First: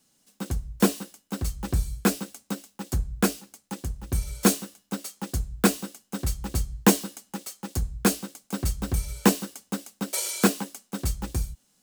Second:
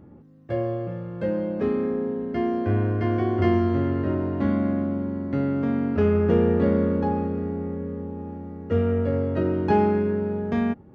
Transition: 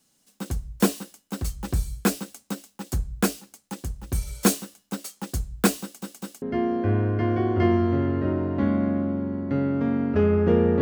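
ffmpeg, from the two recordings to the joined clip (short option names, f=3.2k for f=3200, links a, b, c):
-filter_complex "[0:a]apad=whole_dur=10.81,atrim=end=10.81,asplit=3[a][b][c];[a]atrim=end=6.022[d];[b]atrim=start=5.818:end=6.022[e];[c]atrim=start=5.818:end=6.022[f];[1:a]atrim=start=2.238:end=6.63[g];[d][e]acrossfade=d=0.004:c1=hsin:c2=hsin[h];[h][f]acrossfade=d=0.004:c1=hsin:c2=hsin[i];[i][g]acrossfade=d=0.004:c1=hsin:c2=hsin"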